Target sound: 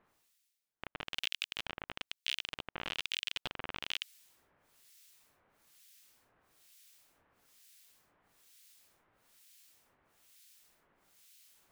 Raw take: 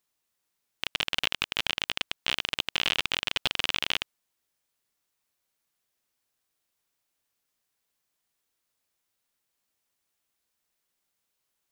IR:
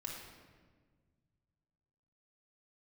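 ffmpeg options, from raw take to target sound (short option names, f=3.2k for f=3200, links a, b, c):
-filter_complex "[0:a]areverse,acompressor=mode=upward:threshold=-35dB:ratio=2.5,areverse,acrossover=split=1900[a][b];[a]aeval=exprs='val(0)*(1-1/2+1/2*cos(2*PI*1.1*n/s))':c=same[c];[b]aeval=exprs='val(0)*(1-1/2-1/2*cos(2*PI*1.1*n/s))':c=same[d];[c][d]amix=inputs=2:normalize=0,volume=-5.5dB"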